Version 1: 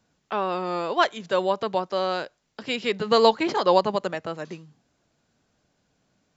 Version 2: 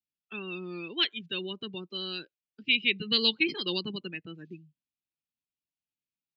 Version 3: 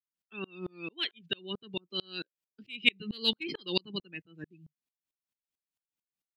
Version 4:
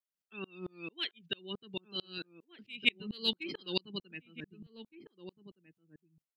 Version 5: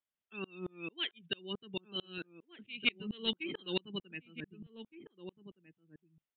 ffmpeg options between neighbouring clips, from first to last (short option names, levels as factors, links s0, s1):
-af "afftdn=nr=30:nf=-32,firequalizer=gain_entry='entry(340,0);entry(600,-26);entry(950,-21);entry(2500,14);entry(4600,6);entry(7500,-1)':delay=0.05:min_phase=1,volume=0.562"
-af "acontrast=68,aeval=exprs='val(0)*pow(10,-35*if(lt(mod(-4.5*n/s,1),2*abs(-4.5)/1000),1-mod(-4.5*n/s,1)/(2*abs(-4.5)/1000),(mod(-4.5*n/s,1)-2*abs(-4.5)/1000)/(1-2*abs(-4.5)/1000))/20)':c=same"
-filter_complex "[0:a]asplit=2[s0][s1];[s1]adelay=1516,volume=0.282,highshelf=f=4000:g=-34.1[s2];[s0][s2]amix=inputs=2:normalize=0,volume=0.668"
-af "asoftclip=type=tanh:threshold=0.1,aresample=8000,aresample=44100,volume=1.12"